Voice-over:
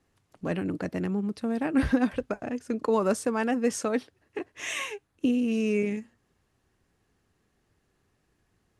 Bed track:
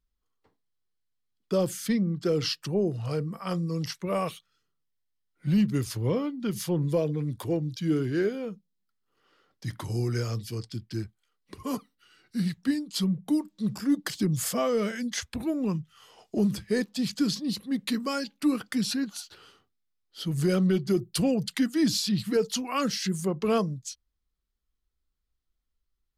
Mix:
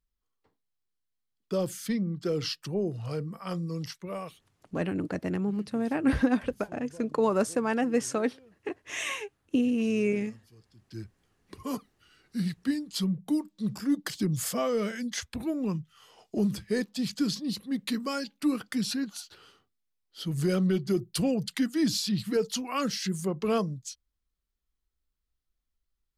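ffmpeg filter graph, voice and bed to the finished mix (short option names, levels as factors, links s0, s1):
-filter_complex "[0:a]adelay=4300,volume=0.944[s0];[1:a]volume=7.5,afade=t=out:st=3.72:d=0.91:silence=0.105925,afade=t=in:st=10.77:d=0.44:silence=0.0891251[s1];[s0][s1]amix=inputs=2:normalize=0"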